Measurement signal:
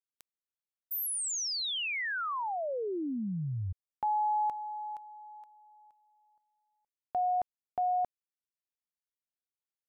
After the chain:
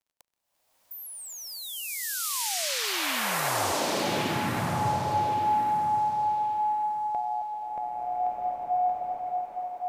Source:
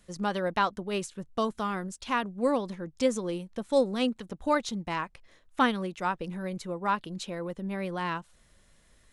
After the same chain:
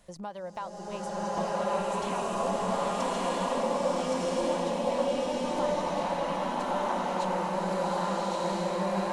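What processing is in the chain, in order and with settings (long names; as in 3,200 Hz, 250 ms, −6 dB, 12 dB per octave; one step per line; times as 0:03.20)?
flat-topped bell 740 Hz +9 dB 1.1 octaves
downward compressor 3 to 1, threshold −42 dBFS
surface crackle 29 per second −58 dBFS
on a send: feedback echo with a high-pass in the loop 1,118 ms, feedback 25%, high-pass 400 Hz, level −3.5 dB
on the sum: slow-attack reverb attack 1,350 ms, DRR −10.5 dB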